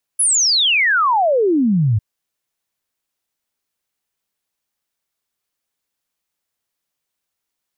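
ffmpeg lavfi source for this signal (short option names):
-f lavfi -i "aevalsrc='0.251*clip(min(t,1.8-t)/0.01,0,1)*sin(2*PI*11000*1.8/log(99/11000)*(exp(log(99/11000)*t/1.8)-1))':d=1.8:s=44100"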